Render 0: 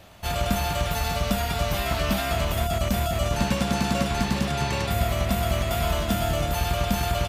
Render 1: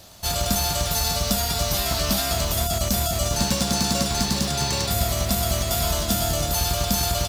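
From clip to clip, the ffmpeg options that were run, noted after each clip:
ffmpeg -i in.wav -af "highshelf=frequency=3500:width_type=q:width=1.5:gain=9.5,acrusher=bits=5:mode=log:mix=0:aa=0.000001" out.wav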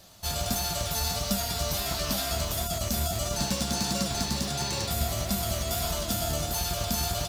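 ffmpeg -i in.wav -af "flanger=delay=5:depth=8.6:regen=55:speed=1.5:shape=sinusoidal,volume=-2dB" out.wav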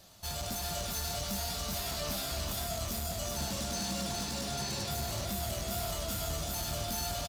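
ffmpeg -i in.wav -af "asoftclip=type=tanh:threshold=-28dB,aecho=1:1:376:0.596,volume=-4dB" out.wav

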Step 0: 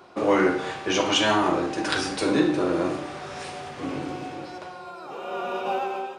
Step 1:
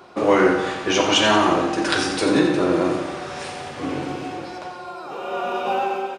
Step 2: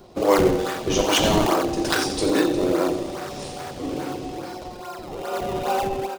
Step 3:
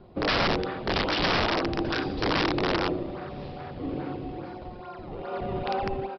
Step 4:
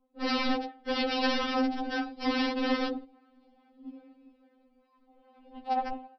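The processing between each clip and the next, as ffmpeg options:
ffmpeg -i in.wav -af "aecho=1:1:88|176|264|352|440|528|616:0.355|0.206|0.119|0.0692|0.0402|0.0233|0.0135,volume=4dB" out.wav
ffmpeg -i in.wav -filter_complex "[0:a]acrossover=split=270|870|3000[link_01][link_02][link_03][link_04];[link_01]acompressor=threshold=-36dB:ratio=6[link_05];[link_03]acrusher=samples=32:mix=1:aa=0.000001:lfo=1:lforange=51.2:lforate=2.4[link_06];[link_05][link_02][link_06][link_04]amix=inputs=4:normalize=0" out.wav
ffmpeg -i in.wav -af "bass=frequency=250:gain=7,treble=frequency=4000:gain=-14,aresample=11025,aeval=exprs='(mod(4.47*val(0)+1,2)-1)/4.47':channel_layout=same,aresample=44100,volume=-6dB" out.wav
ffmpeg -i in.wav -af "agate=range=-20dB:threshold=-28dB:ratio=16:detection=peak,equalizer=frequency=150:width=0.49:gain=8,afftfilt=real='re*3.46*eq(mod(b,12),0)':imag='im*3.46*eq(mod(b,12),0)':win_size=2048:overlap=0.75,volume=-3dB" out.wav

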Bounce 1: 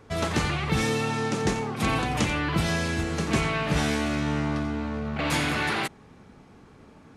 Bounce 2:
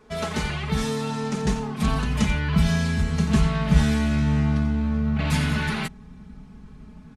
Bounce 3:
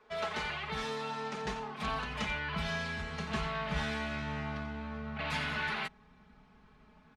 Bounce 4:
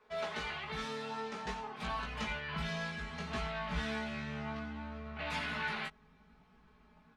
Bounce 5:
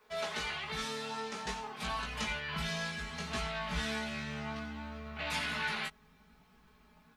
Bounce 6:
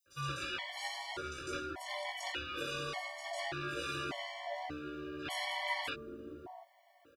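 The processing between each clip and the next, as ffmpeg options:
ffmpeg -i in.wav -af "asubboost=boost=8:cutoff=160,aecho=1:1:4.7:0.92,volume=-4dB" out.wav
ffmpeg -i in.wav -filter_complex "[0:a]acrossover=split=470 4600:gain=0.178 1 0.158[link_01][link_02][link_03];[link_01][link_02][link_03]amix=inputs=3:normalize=0,volume=-4.5dB" out.wav
ffmpeg -i in.wav -af "flanger=delay=16.5:depth=2.2:speed=0.59" out.wav
ffmpeg -i in.wav -af "crystalizer=i=2.5:c=0" out.wav
ffmpeg -i in.wav -filter_complex "[0:a]acrossover=split=470|5100[link_01][link_02][link_03];[link_02]adelay=60[link_04];[link_01]adelay=750[link_05];[link_05][link_04][link_03]amix=inputs=3:normalize=0,aeval=exprs='val(0)*sin(2*PI*520*n/s)':channel_layout=same,afftfilt=real='re*gt(sin(2*PI*0.85*pts/sr)*(1-2*mod(floor(b*sr/1024/580),2)),0)':imag='im*gt(sin(2*PI*0.85*pts/sr)*(1-2*mod(floor(b*sr/1024/580),2)),0)':win_size=1024:overlap=0.75,volume=4.5dB" out.wav

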